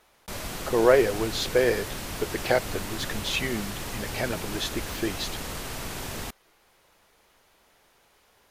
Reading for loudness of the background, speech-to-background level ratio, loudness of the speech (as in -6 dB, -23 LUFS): -34.5 LUFS, 7.5 dB, -27.0 LUFS